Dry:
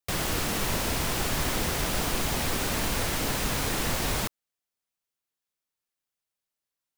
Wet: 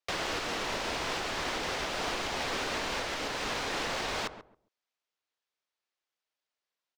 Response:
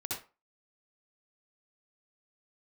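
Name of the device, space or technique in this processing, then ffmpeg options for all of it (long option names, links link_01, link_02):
DJ mixer with the lows and highs turned down: -filter_complex "[0:a]acrossover=split=320 6200:gain=0.2 1 0.0631[link_01][link_02][link_03];[link_01][link_02][link_03]amix=inputs=3:normalize=0,asplit=2[link_04][link_05];[link_05]adelay=136,lowpass=frequency=870:poles=1,volume=-10.5dB,asplit=2[link_06][link_07];[link_07]adelay=136,lowpass=frequency=870:poles=1,volume=0.2,asplit=2[link_08][link_09];[link_09]adelay=136,lowpass=frequency=870:poles=1,volume=0.2[link_10];[link_04][link_06][link_08][link_10]amix=inputs=4:normalize=0,alimiter=level_in=1.5dB:limit=-24dB:level=0:latency=1:release=468,volume=-1.5dB,volume=2.5dB"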